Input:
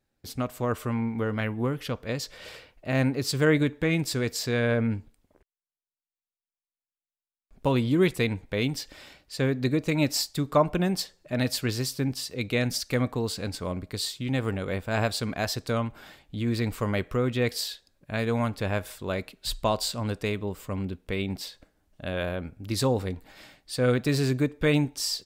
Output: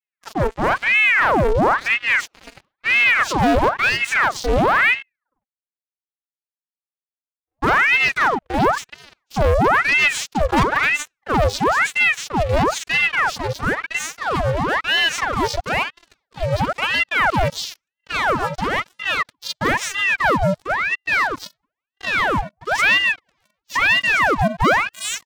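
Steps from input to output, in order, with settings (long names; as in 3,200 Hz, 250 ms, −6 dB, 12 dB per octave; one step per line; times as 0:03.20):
vocoder with a gliding carrier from A3, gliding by +12 semitones
backwards echo 39 ms −7.5 dB
pitch vibrato 0.37 Hz 13 cents
leveller curve on the samples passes 5
ring modulator whose carrier an LFO sweeps 1,300 Hz, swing 85%, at 1 Hz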